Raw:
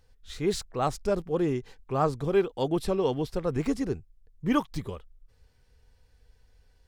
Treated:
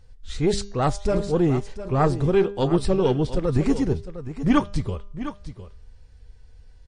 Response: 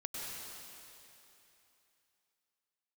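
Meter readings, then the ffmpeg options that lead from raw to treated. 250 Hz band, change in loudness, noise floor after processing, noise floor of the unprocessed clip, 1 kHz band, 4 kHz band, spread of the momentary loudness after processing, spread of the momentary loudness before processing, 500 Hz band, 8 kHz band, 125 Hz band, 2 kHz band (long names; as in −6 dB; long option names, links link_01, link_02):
+7.0 dB, +5.5 dB, −49 dBFS, −63 dBFS, +4.0 dB, +4.5 dB, 13 LU, 11 LU, +5.0 dB, +4.5 dB, +9.5 dB, +5.0 dB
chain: -filter_complex "[0:a]lowshelf=frequency=170:gain=9.5,bandreject=frequency=201.2:width_type=h:width=4,bandreject=frequency=402.4:width_type=h:width=4,bandreject=frequency=603.6:width_type=h:width=4,bandreject=frequency=804.8:width_type=h:width=4,bandreject=frequency=1006:width_type=h:width=4,bandreject=frequency=1207.2:width_type=h:width=4,bandreject=frequency=1408.4:width_type=h:width=4,bandreject=frequency=1609.6:width_type=h:width=4,bandreject=frequency=1810.8:width_type=h:width=4,bandreject=frequency=2012:width_type=h:width=4,bandreject=frequency=2213.2:width_type=h:width=4,bandreject=frequency=2414.4:width_type=h:width=4,bandreject=frequency=2615.6:width_type=h:width=4,bandreject=frequency=2816.8:width_type=h:width=4,bandreject=frequency=3018:width_type=h:width=4,bandreject=frequency=3219.2:width_type=h:width=4,bandreject=frequency=3420.4:width_type=h:width=4,bandreject=frequency=3621.6:width_type=h:width=4,bandreject=frequency=3822.8:width_type=h:width=4,bandreject=frequency=4024:width_type=h:width=4,bandreject=frequency=4225.2:width_type=h:width=4,bandreject=frequency=4426.4:width_type=h:width=4,bandreject=frequency=4627.6:width_type=h:width=4,bandreject=frequency=4828.8:width_type=h:width=4,bandreject=frequency=5030:width_type=h:width=4,bandreject=frequency=5231.2:width_type=h:width=4,bandreject=frequency=5432.4:width_type=h:width=4,bandreject=frequency=5633.6:width_type=h:width=4,bandreject=frequency=5834.8:width_type=h:width=4,bandreject=frequency=6036:width_type=h:width=4,bandreject=frequency=6237.2:width_type=h:width=4,bandreject=frequency=6438.4:width_type=h:width=4,bandreject=frequency=6639.6:width_type=h:width=4,bandreject=frequency=6840.8:width_type=h:width=4,aeval=exprs='0.282*(cos(1*acos(clip(val(0)/0.282,-1,1)))-cos(1*PI/2))+0.0708*(cos(2*acos(clip(val(0)/0.282,-1,1)))-cos(2*PI/2))':channel_layout=same,asplit=2[link_01][link_02];[link_02]aecho=0:1:706:0.237[link_03];[link_01][link_03]amix=inputs=2:normalize=0,volume=4.5dB" -ar 22050 -c:a libmp3lame -b:a 40k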